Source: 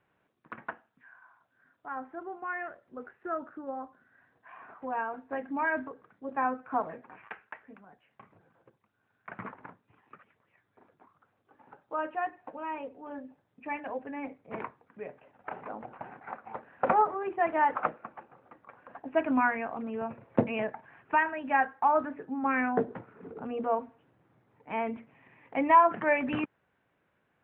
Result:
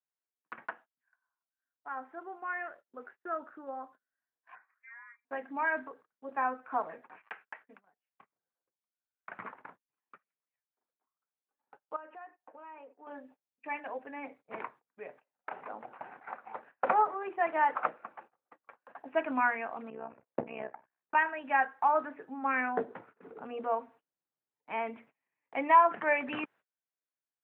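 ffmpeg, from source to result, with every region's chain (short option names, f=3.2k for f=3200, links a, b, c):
-filter_complex "[0:a]asettb=1/sr,asplit=3[a][b][c];[a]atrim=end=4.554[d];[b]atrim=start=4.55:end=5.25,asetpts=PTS-STARTPTS,afade=t=in:d=0.004:c=qsin,afade=t=out:st=0.696:d=0.004:c=qsin,equalizer=f=280:w=2.6:g=-8.5,acompressor=threshold=-51dB:ratio=4:attack=3.2:release=140:knee=1:detection=peak,lowpass=f=2.2k:t=q:w=0.5098,lowpass=f=2.2k:t=q:w=0.6013,lowpass=f=2.2k:t=q:w=0.9,lowpass=f=2.2k:t=q:w=2.563,afreqshift=-2600[e];[c]atrim=start=5.246[f];[d][e]acrossfade=d=0.004:c1=hsin:c2=qsin[g];[g][f]acrossfade=d=0.004:c1=qsin:c2=hsin,asettb=1/sr,asplit=3[h][i][j];[h]atrim=end=11.964[k];[i]atrim=start=11.96:end=13.07,asetpts=PTS-STARTPTS,afade=t=in:d=0.004:c=qsin,afade=t=out:st=1.106:d=0.004:c=qsin,highpass=240,lowpass=2.2k,acompressor=threshold=-45dB:ratio=4:attack=3.2:release=140:knee=1:detection=peak[l];[j]atrim=start=13.066[m];[k][l]acrossfade=d=0.004:c1=hsin:c2=qsin[n];[n][m]acrossfade=d=0.004:c1=qsin:c2=hsin,asettb=1/sr,asplit=3[o][p][q];[o]atrim=end=19.904[r];[p]atrim=start=19.9:end=21.15,asetpts=PTS-STARTPTS,afade=t=in:d=0.004:c=qsin,afade=t=out:st=1.246:d=0.004:c=qsin,lowpass=f=1.3k:p=1,tremolo=f=64:d=0.857[s];[q]atrim=start=21.146[t];[r][s]acrossfade=d=0.004:c1=hsin:c2=qsin[u];[u][t]acrossfade=d=0.004:c1=qsin:c2=hsin,agate=range=-28dB:threshold=-51dB:ratio=16:detection=peak,highpass=f=620:p=1"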